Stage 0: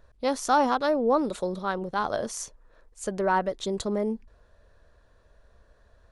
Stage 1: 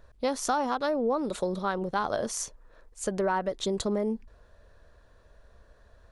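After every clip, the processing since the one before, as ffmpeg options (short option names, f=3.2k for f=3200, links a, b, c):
-af "acompressor=threshold=-26dB:ratio=5,volume=2dB"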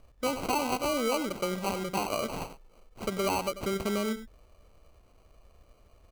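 -af "aecho=1:1:93:0.237,acrusher=samples=25:mix=1:aa=0.000001,volume=-2dB"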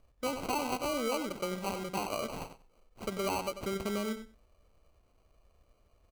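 -filter_complex "[0:a]asplit=2[a][b];[b]aeval=exprs='sgn(val(0))*max(abs(val(0))-0.00473,0)':c=same,volume=-4.5dB[c];[a][c]amix=inputs=2:normalize=0,aecho=1:1:93|186:0.106|0.0286,volume=-8dB"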